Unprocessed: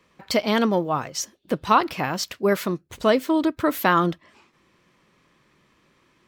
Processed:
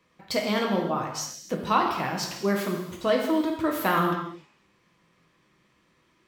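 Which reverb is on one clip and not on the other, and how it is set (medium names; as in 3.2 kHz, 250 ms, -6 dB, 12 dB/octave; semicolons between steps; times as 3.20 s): gated-style reverb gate 340 ms falling, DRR 0 dB; trim -6.5 dB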